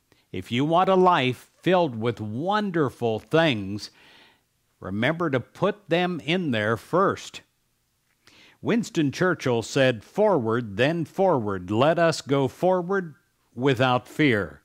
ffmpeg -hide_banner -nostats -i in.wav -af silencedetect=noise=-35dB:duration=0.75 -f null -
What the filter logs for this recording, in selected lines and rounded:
silence_start: 3.86
silence_end: 4.83 | silence_duration: 0.96
silence_start: 7.38
silence_end: 8.27 | silence_duration: 0.90